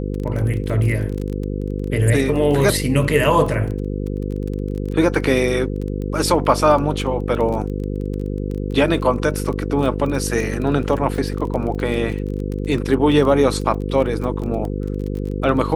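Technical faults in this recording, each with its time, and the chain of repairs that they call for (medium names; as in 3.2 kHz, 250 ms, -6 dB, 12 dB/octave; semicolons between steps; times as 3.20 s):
buzz 50 Hz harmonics 10 -24 dBFS
crackle 23 per s -25 dBFS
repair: de-click; de-hum 50 Hz, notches 10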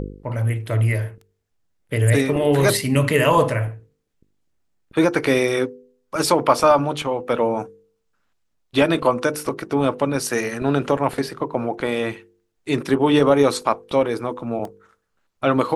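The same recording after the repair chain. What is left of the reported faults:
nothing left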